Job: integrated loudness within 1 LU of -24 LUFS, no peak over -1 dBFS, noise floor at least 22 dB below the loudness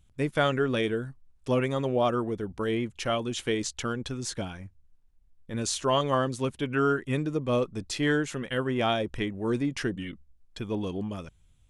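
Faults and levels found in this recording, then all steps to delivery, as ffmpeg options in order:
loudness -29.0 LUFS; peak -12.5 dBFS; loudness target -24.0 LUFS
-> -af "volume=5dB"

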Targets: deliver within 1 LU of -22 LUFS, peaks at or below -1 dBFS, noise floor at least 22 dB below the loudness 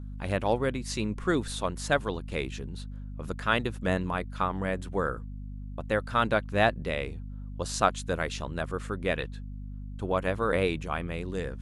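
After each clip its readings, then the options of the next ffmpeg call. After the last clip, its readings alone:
hum 50 Hz; harmonics up to 250 Hz; hum level -36 dBFS; loudness -30.0 LUFS; peak -8.0 dBFS; loudness target -22.0 LUFS
-> -af "bandreject=f=50:t=h:w=4,bandreject=f=100:t=h:w=4,bandreject=f=150:t=h:w=4,bandreject=f=200:t=h:w=4,bandreject=f=250:t=h:w=4"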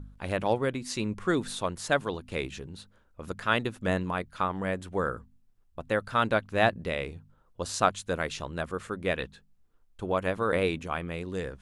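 hum none; loudness -30.0 LUFS; peak -8.0 dBFS; loudness target -22.0 LUFS
-> -af "volume=8dB,alimiter=limit=-1dB:level=0:latency=1"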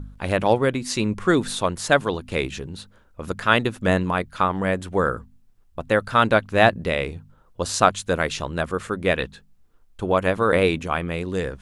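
loudness -22.0 LUFS; peak -1.0 dBFS; noise floor -56 dBFS

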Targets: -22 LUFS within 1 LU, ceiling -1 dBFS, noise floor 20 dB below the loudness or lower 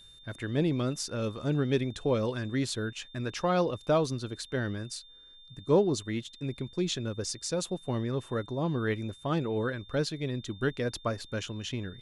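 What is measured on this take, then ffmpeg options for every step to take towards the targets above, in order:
steady tone 3600 Hz; tone level -52 dBFS; loudness -31.5 LUFS; peak -13.5 dBFS; loudness target -22.0 LUFS
-> -af "bandreject=f=3.6k:w=30"
-af "volume=9.5dB"

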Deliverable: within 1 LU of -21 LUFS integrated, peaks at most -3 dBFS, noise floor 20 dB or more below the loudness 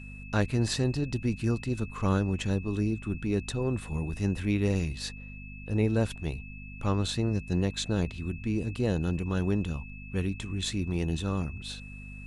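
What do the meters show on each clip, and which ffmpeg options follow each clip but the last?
hum 50 Hz; harmonics up to 250 Hz; hum level -40 dBFS; steady tone 2600 Hz; tone level -47 dBFS; loudness -30.5 LUFS; peak -13.0 dBFS; loudness target -21.0 LUFS
-> -af "bandreject=f=50:t=h:w=4,bandreject=f=100:t=h:w=4,bandreject=f=150:t=h:w=4,bandreject=f=200:t=h:w=4,bandreject=f=250:t=h:w=4"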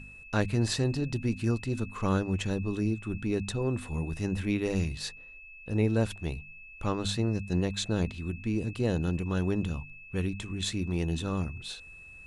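hum none; steady tone 2600 Hz; tone level -47 dBFS
-> -af "bandreject=f=2.6k:w=30"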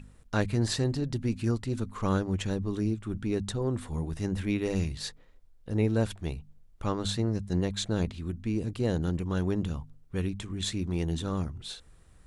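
steady tone none; loudness -31.0 LUFS; peak -14.0 dBFS; loudness target -21.0 LUFS
-> -af "volume=10dB"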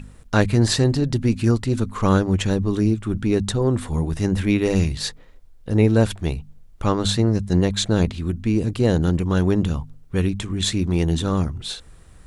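loudness -21.0 LUFS; peak -4.0 dBFS; noise floor -46 dBFS

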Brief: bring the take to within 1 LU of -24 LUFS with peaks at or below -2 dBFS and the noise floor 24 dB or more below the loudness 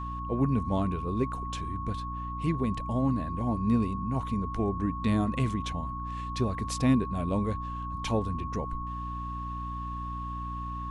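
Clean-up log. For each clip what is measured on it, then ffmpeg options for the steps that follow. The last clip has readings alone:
hum 60 Hz; harmonics up to 300 Hz; hum level -35 dBFS; steady tone 1100 Hz; tone level -36 dBFS; loudness -31.0 LUFS; peak -12.0 dBFS; loudness target -24.0 LUFS
-> -af "bandreject=f=60:t=h:w=6,bandreject=f=120:t=h:w=6,bandreject=f=180:t=h:w=6,bandreject=f=240:t=h:w=6,bandreject=f=300:t=h:w=6"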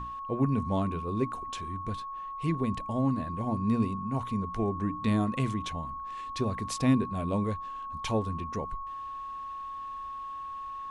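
hum none; steady tone 1100 Hz; tone level -36 dBFS
-> -af "bandreject=f=1.1k:w=30"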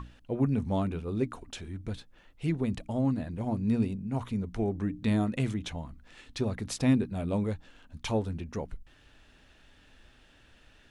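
steady tone none; loudness -31.5 LUFS; peak -13.5 dBFS; loudness target -24.0 LUFS
-> -af "volume=7.5dB"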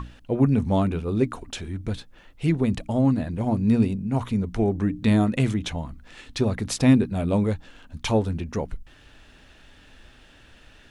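loudness -24.0 LUFS; peak -6.0 dBFS; noise floor -52 dBFS

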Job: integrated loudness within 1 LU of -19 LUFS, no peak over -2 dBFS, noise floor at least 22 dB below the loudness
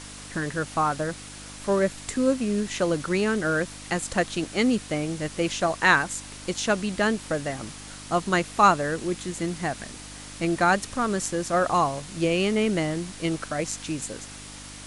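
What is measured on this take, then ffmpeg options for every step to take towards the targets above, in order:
hum 50 Hz; harmonics up to 300 Hz; hum level -45 dBFS; noise floor -41 dBFS; noise floor target -48 dBFS; loudness -25.5 LUFS; peak -5.0 dBFS; loudness target -19.0 LUFS
-> -af "bandreject=f=50:t=h:w=4,bandreject=f=100:t=h:w=4,bandreject=f=150:t=h:w=4,bandreject=f=200:t=h:w=4,bandreject=f=250:t=h:w=4,bandreject=f=300:t=h:w=4"
-af "afftdn=nr=7:nf=-41"
-af "volume=6.5dB,alimiter=limit=-2dB:level=0:latency=1"

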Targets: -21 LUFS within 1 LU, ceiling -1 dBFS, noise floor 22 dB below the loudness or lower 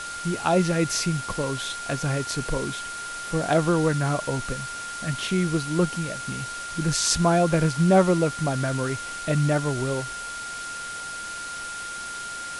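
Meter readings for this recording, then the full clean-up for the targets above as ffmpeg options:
steady tone 1400 Hz; tone level -33 dBFS; noise floor -35 dBFS; noise floor target -48 dBFS; loudness -25.5 LUFS; peak -4.0 dBFS; loudness target -21.0 LUFS
-> -af "bandreject=f=1.4k:w=30"
-af "afftdn=nr=13:nf=-35"
-af "volume=4.5dB,alimiter=limit=-1dB:level=0:latency=1"

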